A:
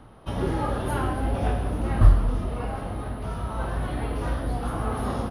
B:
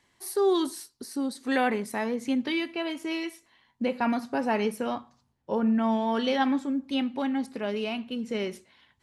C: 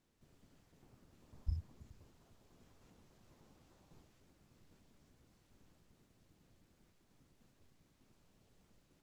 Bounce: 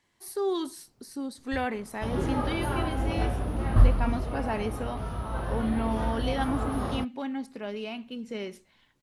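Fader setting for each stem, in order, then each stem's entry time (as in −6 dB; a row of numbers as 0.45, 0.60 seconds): −3.0, −5.0, −2.5 decibels; 1.75, 0.00, 0.05 seconds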